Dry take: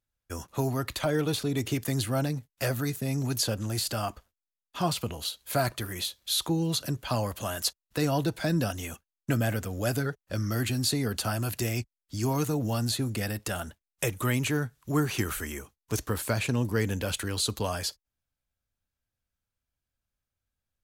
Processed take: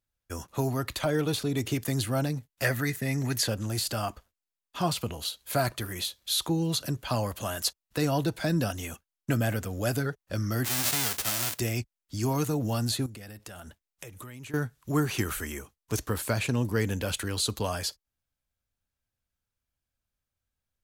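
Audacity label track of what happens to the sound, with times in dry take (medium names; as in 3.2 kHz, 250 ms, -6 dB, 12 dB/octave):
2.640000	3.480000	peaking EQ 1.9 kHz +13 dB 0.44 oct
10.640000	11.580000	formants flattened exponent 0.1
13.060000	14.540000	compression 10:1, threshold -40 dBFS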